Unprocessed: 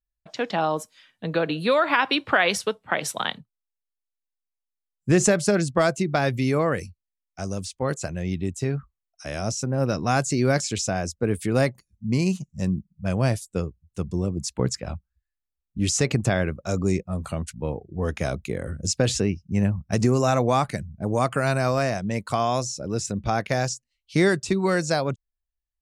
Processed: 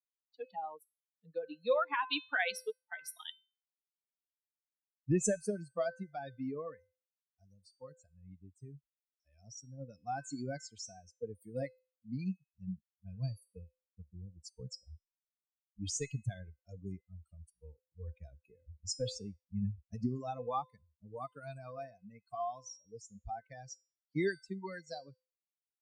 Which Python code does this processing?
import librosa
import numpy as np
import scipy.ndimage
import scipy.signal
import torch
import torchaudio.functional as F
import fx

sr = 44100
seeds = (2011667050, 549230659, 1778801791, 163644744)

y = fx.bin_expand(x, sr, power=3.0)
y = fx.comb_fb(y, sr, f0_hz=510.0, decay_s=0.36, harmonics='all', damping=0.0, mix_pct=70)
y = F.gain(torch.from_numpy(y), 2.0).numpy()